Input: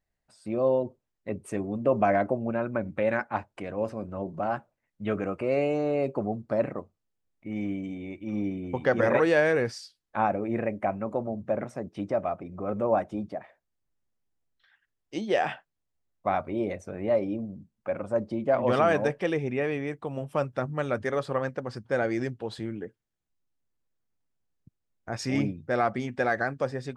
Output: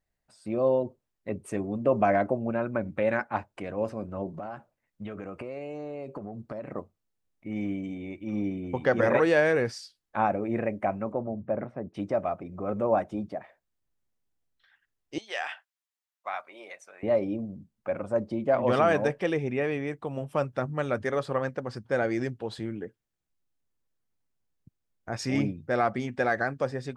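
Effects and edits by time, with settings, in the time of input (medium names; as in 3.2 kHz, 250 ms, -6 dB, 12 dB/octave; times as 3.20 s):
4.34–6.72 s: compression 12:1, threshold -33 dBFS
11.12–11.94 s: distance through air 470 m
15.18–17.03 s: high-pass 1.2 kHz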